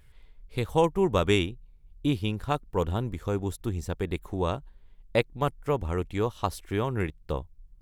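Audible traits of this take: noise floor -55 dBFS; spectral tilt -5.5 dB/octave

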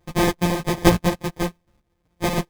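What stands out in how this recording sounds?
a buzz of ramps at a fixed pitch in blocks of 256 samples; chopped level 1.2 Hz, depth 60%, duty 15%; aliases and images of a low sample rate 1.4 kHz, jitter 0%; a shimmering, thickened sound

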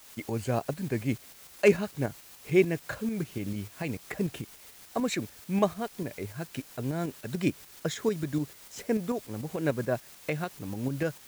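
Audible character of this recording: a quantiser's noise floor 8-bit, dither triangular; tremolo saw up 6.8 Hz, depth 45%

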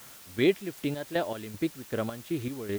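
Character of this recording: chopped level 2.6 Hz, depth 65%, duty 45%; a quantiser's noise floor 8-bit, dither triangular

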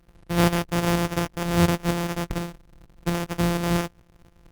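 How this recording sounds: a buzz of ramps at a fixed pitch in blocks of 256 samples; tremolo saw up 4.2 Hz, depth 45%; aliases and images of a low sample rate 4.1 kHz, jitter 0%; Opus

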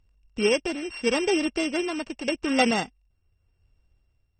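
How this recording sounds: a buzz of ramps at a fixed pitch in blocks of 16 samples; tremolo triangle 0.86 Hz, depth 55%; MP3

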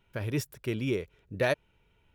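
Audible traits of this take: noise floor -69 dBFS; spectral tilt -5.5 dB/octave

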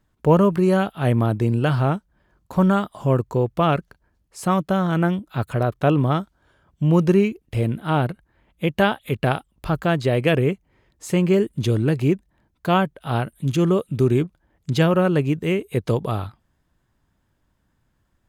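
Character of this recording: noise floor -69 dBFS; spectral tilt -6.0 dB/octave

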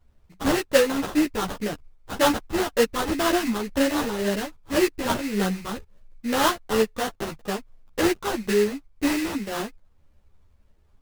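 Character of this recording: phasing stages 2, 1.9 Hz, lowest notch 580–1700 Hz; aliases and images of a low sample rate 2.3 kHz, jitter 20%; a shimmering, thickened sound

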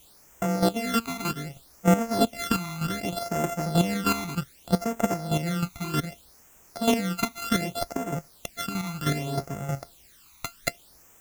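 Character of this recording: a buzz of ramps at a fixed pitch in blocks of 64 samples; chopped level 3.2 Hz, depth 65%, duty 20%; a quantiser's noise floor 10-bit, dither triangular; phasing stages 12, 0.65 Hz, lowest notch 530–4200 Hz

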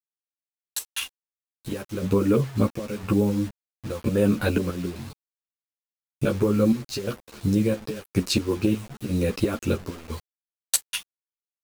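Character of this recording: chopped level 0.99 Hz, depth 65%, duty 65%; a quantiser's noise floor 8-bit, dither none; a shimmering, thickened sound

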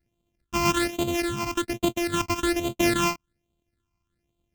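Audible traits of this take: a buzz of ramps at a fixed pitch in blocks of 128 samples; phasing stages 8, 1.2 Hz, lowest notch 490–1700 Hz; AAC

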